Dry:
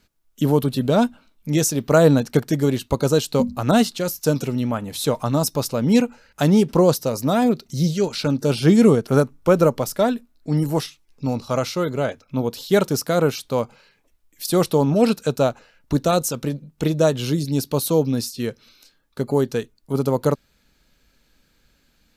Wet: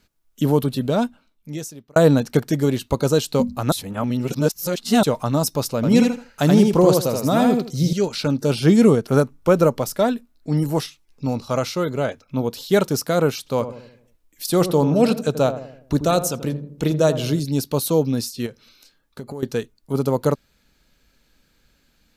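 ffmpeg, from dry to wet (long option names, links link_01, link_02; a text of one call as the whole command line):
ffmpeg -i in.wav -filter_complex "[0:a]asettb=1/sr,asplit=3[link_01][link_02][link_03];[link_01]atrim=end=5.754[link_04];[link_02]atrim=start=5.75:end=7.93,asetpts=PTS-STARTPTS,afade=type=in:duration=0.004:curve=qsin,afade=type=out:start_time=2.176:duration=0.004:curve=qsin,aecho=1:1:80|160|240:0.668|0.147|0.0323,atrim=end_sample=96138[link_05];[link_03]atrim=start=7.926[link_06];[link_04][link_05]acrossfade=duration=0.004:curve1=hsin:curve2=qsin[link_07];[link_07][link_06]acrossfade=duration=0.004:curve1=qsin:curve2=hsin,asettb=1/sr,asplit=3[link_08][link_09][link_10];[link_08]atrim=end=13.384[link_11];[link_09]atrim=start=13.38:end=17.4,asetpts=PTS-STARTPTS,afade=type=in:duration=0.004:curve=qsin,afade=type=out:start_time=4.016:duration=0.004:curve=qsin,asplit=2[link_12][link_13];[link_13]adelay=83,lowpass=frequency=830:poles=1,volume=-9.5dB,asplit=2[link_14][link_15];[link_15]adelay=83,lowpass=frequency=830:poles=1,volume=0.52,asplit=2[link_16][link_17];[link_17]adelay=83,lowpass=frequency=830:poles=1,volume=0.52,asplit=2[link_18][link_19];[link_19]adelay=83,lowpass=frequency=830:poles=1,volume=0.52,asplit=2[link_20][link_21];[link_21]adelay=83,lowpass=frequency=830:poles=1,volume=0.52,asplit=2[link_22][link_23];[link_23]adelay=83,lowpass=frequency=830:poles=1,volume=0.52[link_24];[link_12][link_14][link_16][link_18][link_20][link_22][link_24]amix=inputs=7:normalize=0,atrim=end_sample=177282[link_25];[link_10]atrim=start=17.396[link_26];[link_11][link_25]acrossfade=duration=0.004:curve1=hsin:curve2=qsin[link_27];[link_27][link_26]acrossfade=duration=0.004:curve1=qsin:curve2=hsin,asettb=1/sr,asplit=3[link_28][link_29][link_30];[link_28]atrim=end=18.464[link_31];[link_29]atrim=start=18.46:end=19.43,asetpts=PTS-STARTPTS,afade=type=in:duration=0.004:curve=qsin,afade=type=out:start_time=0.966:duration=0.004:curve=qsin,acompressor=threshold=-29dB:ratio=6:attack=3.2:release=140:knee=1:detection=peak[link_32];[link_30]atrim=start=19.426[link_33];[link_31][link_32]acrossfade=duration=0.004:curve1=hsin:curve2=qsin[link_34];[link_34][link_33]acrossfade=duration=0.004:curve1=qsin:curve2=hsin,asplit=4[link_35][link_36][link_37][link_38];[link_35]atrim=end=1.96,asetpts=PTS-STARTPTS,afade=type=out:start_time=0.59:duration=1.37[link_39];[link_36]atrim=start=1.96:end=3.722,asetpts=PTS-STARTPTS,afade=type=in:duration=0.004:curve=hsin[link_40];[link_37]atrim=start=3.718:end=5.032,asetpts=PTS-STARTPTS,areverse[link_41];[link_38]atrim=start=5.028[link_42];[link_39][link_40]concat=n=2:v=0:a=1[link_43];[link_43][link_41]acrossfade=duration=0.004:curve1=hsin:curve2=hsin[link_44];[link_44][link_42]acrossfade=duration=0.004:curve1=hsin:curve2=hsin" out.wav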